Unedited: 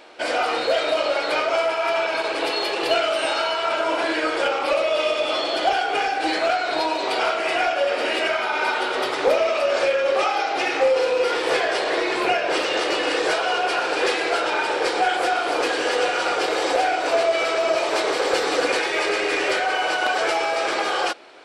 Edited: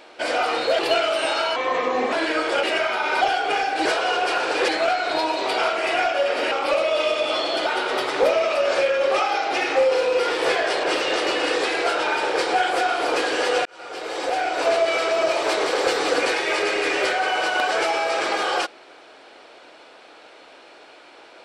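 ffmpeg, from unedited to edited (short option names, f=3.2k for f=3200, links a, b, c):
-filter_complex "[0:a]asplit=13[a][b][c][d][e][f][g][h][i][j][k][l][m];[a]atrim=end=0.792[n];[b]atrim=start=2.788:end=3.564[o];[c]atrim=start=3.56:end=4,asetpts=PTS-STARTPTS,asetrate=34398,aresample=44100[p];[d]atrim=start=3.996:end=4.512[q];[e]atrim=start=8.128:end=8.712[r];[f]atrim=start=5.658:end=6.302[s];[g]atrim=start=13.268:end=14.102[t];[h]atrim=start=6.298:end=8.132[u];[i]atrim=start=4.508:end=5.662[v];[j]atrim=start=8.708:end=11.882[w];[k]atrim=start=12.468:end=13.272[x];[l]atrim=start=14.098:end=16.12,asetpts=PTS-STARTPTS,afade=t=out:st=2.018:d=0.004:c=hsin[y];[m]atrim=start=16.12,asetpts=PTS-STARTPTS,afade=t=in:d=1.02[z];[n][o]acrossfade=d=0.004:c1=hsin:c2=hsin[aa];[aa][p]acrossfade=d=0.004:c1=hsin:c2=hsin[ab];[ab][q]acrossfade=d=0.004:c1=hsin:c2=hsin[ac];[ac][r]acrossfade=d=0.004:c1=hsin:c2=hsin[ad];[ad][s]acrossfade=d=0.004:c1=hsin:c2=hsin[ae];[ae][t]acrossfade=d=0.004:c1=hsin:c2=hsin[af];[af][u]acrossfade=d=0.004:c1=hsin:c2=hsin[ag];[ag][v]acrossfade=d=0.004:c1=hsin:c2=hsin[ah];[ah][w]acrossfade=d=0.004:c1=hsin:c2=hsin[ai];[ai][x]acrossfade=d=0.004:c1=hsin:c2=hsin[aj];[y][z]concat=n=2:v=0:a=1[ak];[aj][ak]acrossfade=d=0.004:c1=hsin:c2=hsin"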